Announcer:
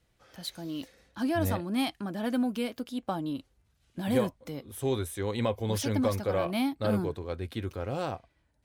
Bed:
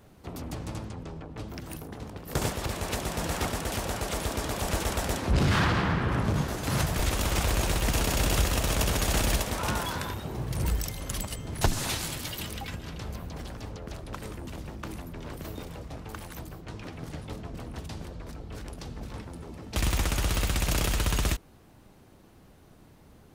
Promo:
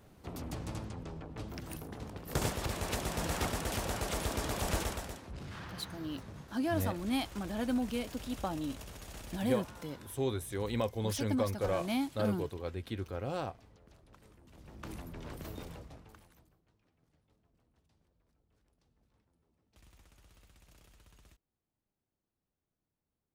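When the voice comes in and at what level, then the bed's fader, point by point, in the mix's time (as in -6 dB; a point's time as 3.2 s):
5.35 s, -4.0 dB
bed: 4.79 s -4 dB
5.33 s -21.5 dB
14.45 s -21.5 dB
14.9 s -5.5 dB
15.71 s -5.5 dB
16.77 s -35 dB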